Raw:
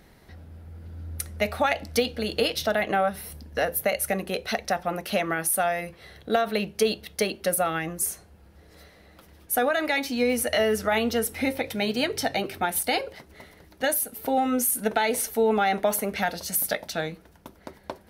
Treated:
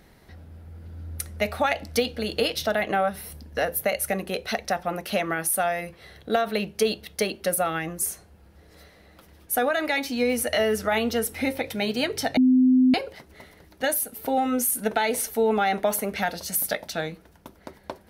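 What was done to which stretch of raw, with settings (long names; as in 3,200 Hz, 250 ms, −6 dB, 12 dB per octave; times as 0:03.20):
0:12.37–0:12.94: beep over 256 Hz −14 dBFS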